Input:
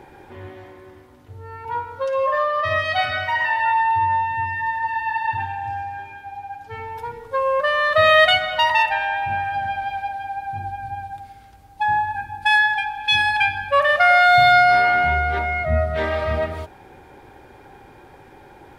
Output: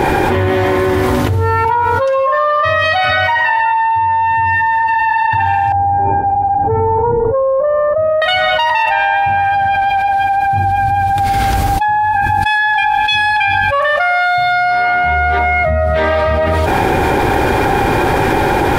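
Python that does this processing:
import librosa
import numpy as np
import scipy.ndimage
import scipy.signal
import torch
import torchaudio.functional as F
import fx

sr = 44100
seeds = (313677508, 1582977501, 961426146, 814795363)

y = fx.ladder_lowpass(x, sr, hz=910.0, resonance_pct=20, at=(5.72, 8.22))
y = fx.dynamic_eq(y, sr, hz=920.0, q=1.0, threshold_db=-27.0, ratio=4.0, max_db=3)
y = fx.env_flatten(y, sr, amount_pct=100)
y = y * librosa.db_to_amplitude(-3.0)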